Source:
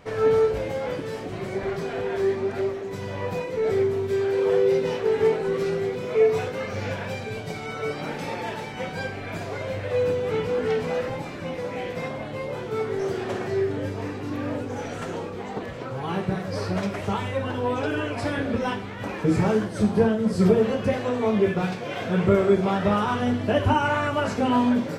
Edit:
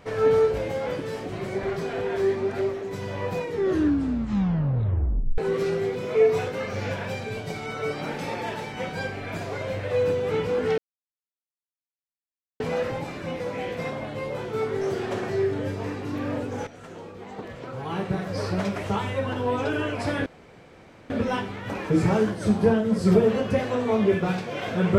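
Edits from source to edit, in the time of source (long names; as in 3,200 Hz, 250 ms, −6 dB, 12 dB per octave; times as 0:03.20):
0:03.40: tape stop 1.98 s
0:10.78: splice in silence 1.82 s
0:14.85–0:16.52: fade in, from −14 dB
0:18.44: splice in room tone 0.84 s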